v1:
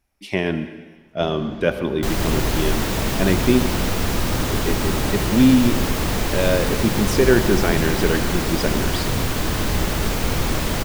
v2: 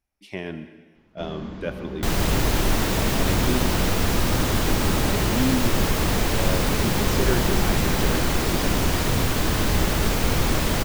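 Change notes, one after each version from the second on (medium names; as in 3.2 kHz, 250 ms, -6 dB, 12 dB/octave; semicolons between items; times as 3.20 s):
speech -10.5 dB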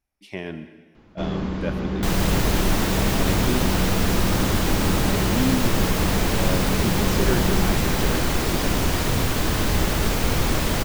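first sound +9.0 dB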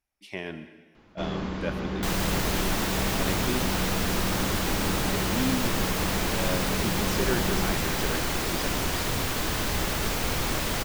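second sound: send -6.0 dB; master: add bass shelf 470 Hz -6.5 dB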